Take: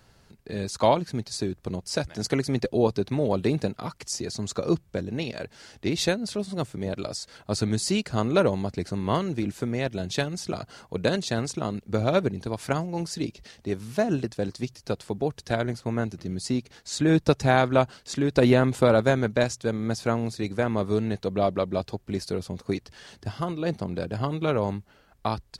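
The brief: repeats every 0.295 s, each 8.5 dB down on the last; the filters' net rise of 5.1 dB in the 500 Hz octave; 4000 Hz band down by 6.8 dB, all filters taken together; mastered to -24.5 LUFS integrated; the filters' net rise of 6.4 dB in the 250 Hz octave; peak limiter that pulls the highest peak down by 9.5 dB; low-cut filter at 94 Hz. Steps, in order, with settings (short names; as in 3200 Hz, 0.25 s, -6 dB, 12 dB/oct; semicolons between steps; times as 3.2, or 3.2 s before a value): HPF 94 Hz; bell 250 Hz +7 dB; bell 500 Hz +4.5 dB; bell 4000 Hz -8.5 dB; limiter -11.5 dBFS; feedback echo 0.295 s, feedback 38%, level -8.5 dB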